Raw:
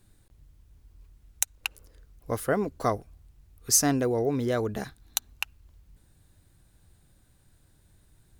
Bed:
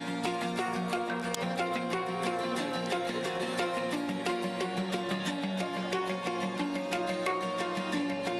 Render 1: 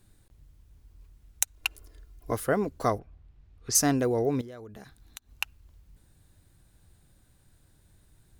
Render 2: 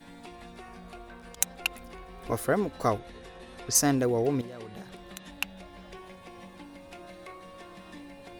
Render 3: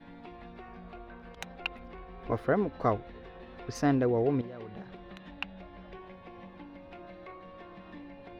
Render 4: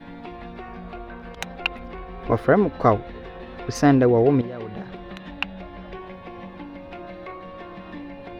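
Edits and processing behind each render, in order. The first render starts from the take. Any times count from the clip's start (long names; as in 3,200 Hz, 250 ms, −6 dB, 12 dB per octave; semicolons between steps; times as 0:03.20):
0:01.56–0:02.33: comb filter 2.9 ms; 0:02.98–0:03.74: low-pass filter 2,500 Hz → 4,600 Hz; 0:04.41–0:05.31: downward compressor 3 to 1, threshold −47 dBFS
mix in bed −14.5 dB
high-frequency loss of the air 330 metres
level +10 dB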